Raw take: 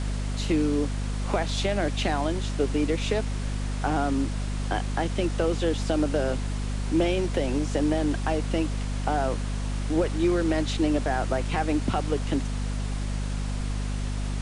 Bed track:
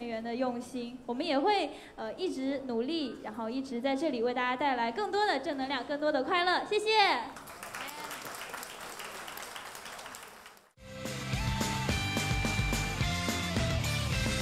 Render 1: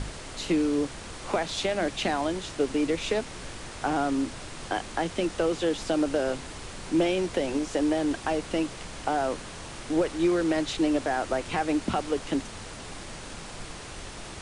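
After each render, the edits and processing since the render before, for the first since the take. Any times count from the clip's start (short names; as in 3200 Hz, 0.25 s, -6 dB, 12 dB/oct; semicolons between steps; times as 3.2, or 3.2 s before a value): notches 50/100/150/200/250 Hz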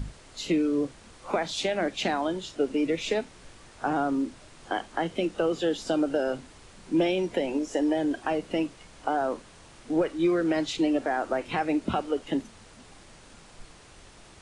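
noise print and reduce 11 dB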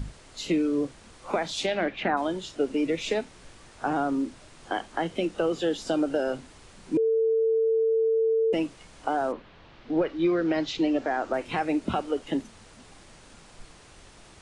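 1.66–2.16 synth low-pass 5400 Hz -> 1200 Hz, resonance Q 2.2; 6.97–8.53 bleep 448 Hz -20 dBFS; 9.31–11.32 LPF 3500 Hz -> 7400 Hz 24 dB/oct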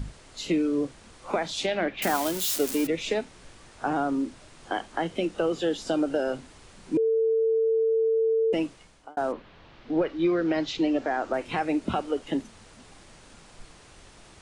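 2.02–2.87 switching spikes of -20 dBFS; 8.64–9.17 fade out linear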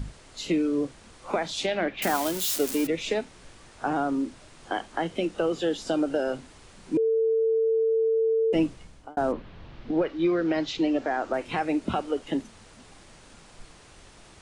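8.55–9.91 low shelf 260 Hz +11.5 dB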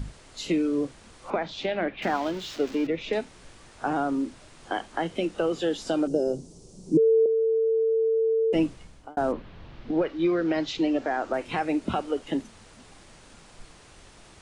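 1.3–3.13 air absorption 200 m; 6.07–7.26 EQ curve 110 Hz 0 dB, 170 Hz +12 dB, 250 Hz +1 dB, 390 Hz +7 dB, 1800 Hz -25 dB, 3800 Hz -10 dB, 5700 Hz +4 dB, 13000 Hz -2 dB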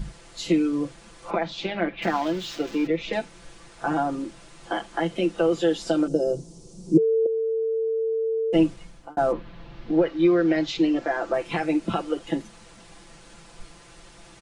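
comb 5.9 ms, depth 85%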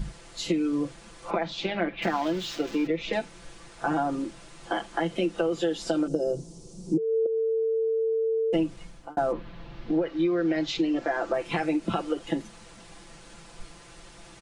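compressor 6:1, threshold -22 dBFS, peak gain reduction 10.5 dB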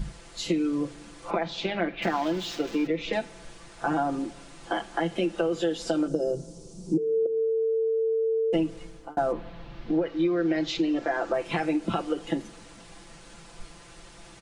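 plate-style reverb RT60 1.7 s, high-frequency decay 0.7×, DRR 19 dB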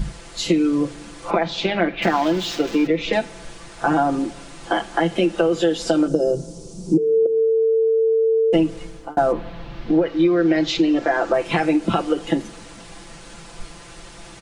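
gain +8 dB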